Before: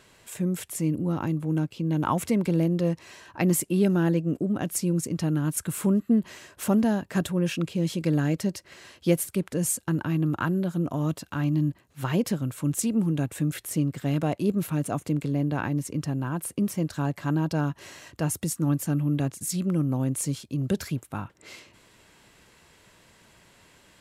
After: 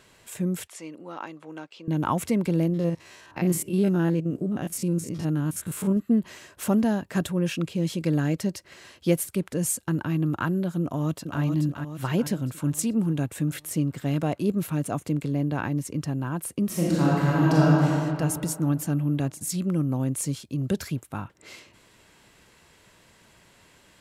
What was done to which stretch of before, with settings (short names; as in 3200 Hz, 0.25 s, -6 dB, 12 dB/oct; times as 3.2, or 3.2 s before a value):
0.67–1.88 BPF 630–5500 Hz
2.69–5.97 stepped spectrum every 50 ms
10.82–11.41 echo throw 0.43 s, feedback 55%, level -5.5 dB
12.11–12.51 notch 1200 Hz, Q 8.6
16.66–17.84 reverb throw, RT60 2.5 s, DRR -7 dB